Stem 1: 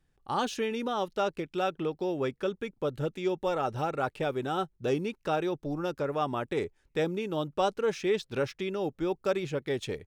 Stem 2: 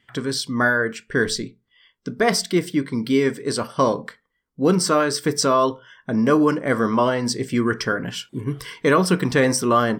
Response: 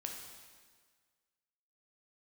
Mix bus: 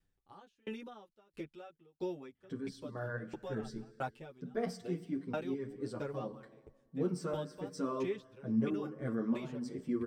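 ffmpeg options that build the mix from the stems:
-filter_complex "[0:a]acrossover=split=2700[link_01][link_02];[link_02]acompressor=threshold=-47dB:ratio=4:attack=1:release=60[link_03];[link_01][link_03]amix=inputs=2:normalize=0,aeval=exprs='val(0)*pow(10,-37*if(lt(mod(1.5*n/s,1),2*abs(1.5)/1000),1-mod(1.5*n/s,1)/(2*abs(1.5)/1000),(mod(1.5*n/s,1)-2*abs(1.5)/1000)/(1-2*abs(1.5)/1000))/20)':channel_layout=same,volume=-0.5dB,asplit=2[link_04][link_05];[1:a]tiltshelf=frequency=1300:gain=8,bandreject=frequency=1000:width=11,flanger=delay=3.2:depth=6.3:regen=62:speed=2:shape=triangular,adelay=2350,volume=-15.5dB,asplit=2[link_06][link_07];[link_07]volume=-9.5dB[link_08];[link_05]apad=whole_len=544477[link_09];[link_06][link_09]sidechaincompress=threshold=-42dB:ratio=8:attack=16:release=346[link_10];[2:a]atrim=start_sample=2205[link_11];[link_08][link_11]afir=irnorm=-1:irlink=0[link_12];[link_04][link_10][link_12]amix=inputs=3:normalize=0,equalizer=frequency=890:width=0.49:gain=-3,asplit=2[link_13][link_14];[link_14]adelay=8.1,afreqshift=0.39[link_15];[link_13][link_15]amix=inputs=2:normalize=1"

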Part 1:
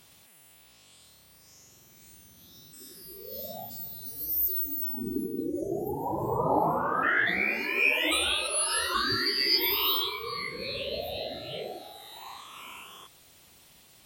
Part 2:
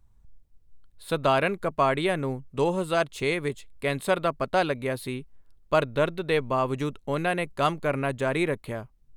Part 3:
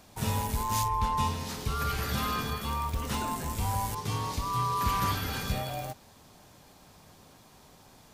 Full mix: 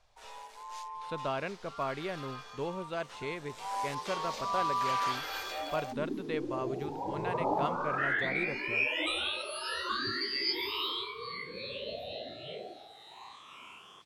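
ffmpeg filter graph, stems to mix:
ffmpeg -i stem1.wav -i stem2.wav -i stem3.wav -filter_complex "[0:a]highpass=96,adelay=950,volume=-5.5dB[link_01];[1:a]volume=-12dB[link_02];[2:a]highpass=frequency=500:width=0.5412,highpass=frequency=500:width=1.3066,volume=-1dB,afade=type=in:start_time=3.45:duration=0.34:silence=0.266073[link_03];[link_01][link_02][link_03]amix=inputs=3:normalize=0,lowpass=5600" out.wav

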